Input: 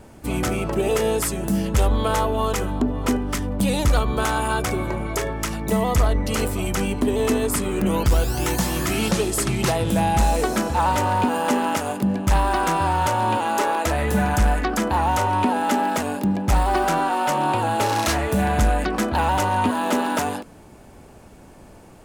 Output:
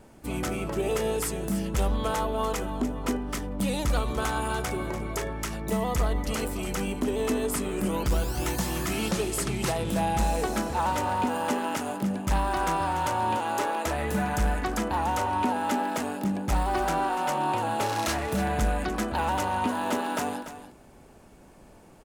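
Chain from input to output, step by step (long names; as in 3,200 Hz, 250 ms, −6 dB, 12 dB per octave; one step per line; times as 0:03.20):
parametric band 91 Hz −6 dB 0.56 octaves
on a send: single-tap delay 291 ms −11.5 dB
on the sum: level −6.5 dB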